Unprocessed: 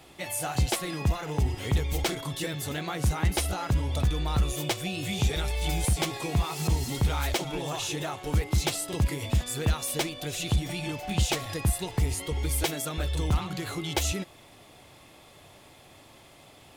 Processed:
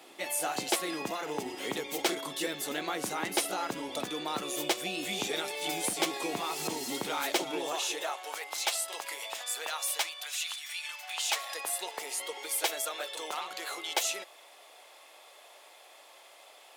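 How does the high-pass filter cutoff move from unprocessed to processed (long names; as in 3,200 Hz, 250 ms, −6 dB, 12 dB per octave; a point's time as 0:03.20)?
high-pass filter 24 dB per octave
0:07.51 260 Hz
0:08.31 630 Hz
0:09.79 630 Hz
0:10.72 1,400 Hz
0:11.73 500 Hz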